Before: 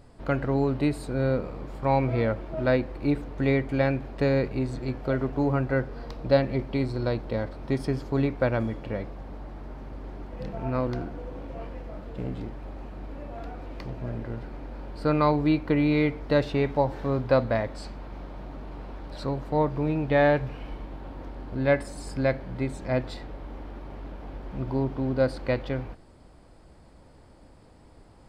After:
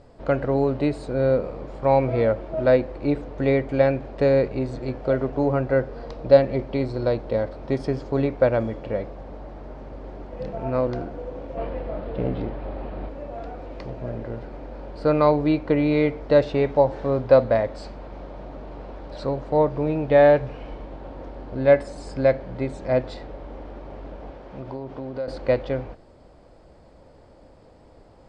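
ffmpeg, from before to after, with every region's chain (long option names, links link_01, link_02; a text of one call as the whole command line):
ffmpeg -i in.wav -filter_complex "[0:a]asettb=1/sr,asplit=3[link_01][link_02][link_03];[link_01]atrim=end=11.574[link_04];[link_02]atrim=start=11.57:end=13.09,asetpts=PTS-STARTPTS,afade=type=in:duration=0.004:curve=qsin,afade=type=out:start_time=1.516:duration=0.004:curve=qsin,lowpass=frequency=4400:width=0.5412,lowpass=frequency=4400:width=1.3066,acontrast=30[link_05];[link_03]atrim=start=13.086[link_06];[link_04][link_05]acrossfade=duration=0.004:curve1=hsin:curve2=qsin[link_07];[link_07][link_06]acrossfade=duration=0.004:curve1=qsin:curve2=hsin,asettb=1/sr,asplit=3[link_08][link_09][link_10];[link_08]atrim=end=24.314[link_11];[link_09]atrim=start=24.31:end=25.28,asetpts=PTS-STARTPTS,afade=type=in:duration=0.004:curve=qsin,afade=type=out:start_time=0.966:duration=0.004:curve=qsin,highpass=51,lowshelf=frequency=450:gain=-5,acompressor=threshold=-31dB:ratio=10:attack=3.2:release=140:knee=1:detection=peak[link_12];[link_10]atrim=start=25.276[link_13];[link_11][link_12]acrossfade=duration=0.004:curve1=hsin:curve2=qsin[link_14];[link_14][link_13]acrossfade=duration=0.004:curve1=qsin:curve2=hsin,lowpass=frequency=7600:width=0.5412,lowpass=frequency=7600:width=1.3066,equalizer=frequency=550:width_type=o:width=0.96:gain=8" out.wav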